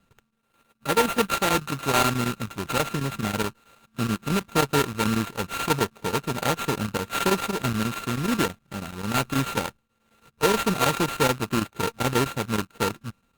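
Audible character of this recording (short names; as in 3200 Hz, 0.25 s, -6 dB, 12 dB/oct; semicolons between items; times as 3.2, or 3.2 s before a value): a buzz of ramps at a fixed pitch in blocks of 32 samples; chopped level 9.3 Hz, depth 65%, duty 85%; aliases and images of a low sample rate 5300 Hz, jitter 20%; Opus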